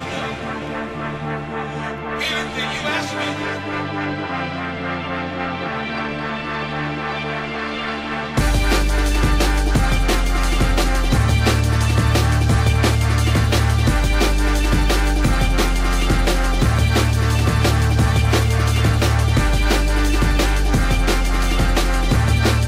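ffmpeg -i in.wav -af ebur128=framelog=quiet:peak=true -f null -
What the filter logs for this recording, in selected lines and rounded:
Integrated loudness:
  I:         -19.1 LUFS
  Threshold: -29.1 LUFS
Loudness range:
  LRA:         6.9 LU
  Threshold: -39.0 LUFS
  LRA low:   -24.0 LUFS
  LRA high:  -17.0 LUFS
True peak:
  Peak:       -7.7 dBFS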